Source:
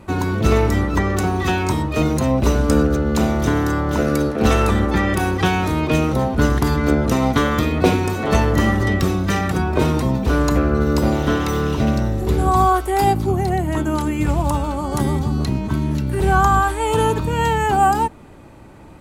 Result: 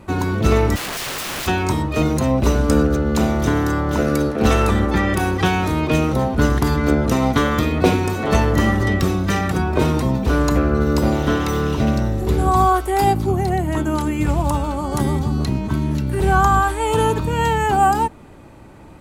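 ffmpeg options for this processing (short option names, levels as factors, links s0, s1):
-filter_complex "[0:a]asplit=3[s0][s1][s2];[s0]afade=t=out:st=0.75:d=0.02[s3];[s1]aeval=exprs='(mod(12.6*val(0)+1,2)-1)/12.6':c=same,afade=t=in:st=0.75:d=0.02,afade=t=out:st=1.46:d=0.02[s4];[s2]afade=t=in:st=1.46:d=0.02[s5];[s3][s4][s5]amix=inputs=3:normalize=0"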